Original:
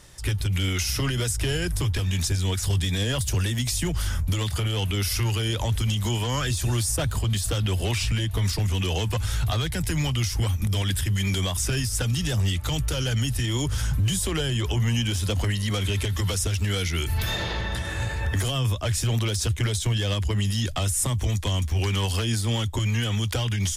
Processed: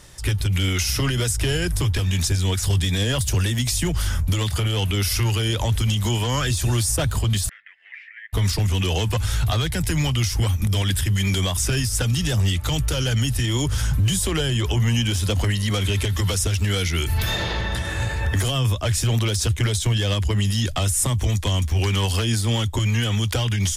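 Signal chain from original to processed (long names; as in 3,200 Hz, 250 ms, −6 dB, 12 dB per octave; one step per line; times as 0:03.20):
0:07.49–0:08.33: flat-topped band-pass 1,900 Hz, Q 4.8
level +3.5 dB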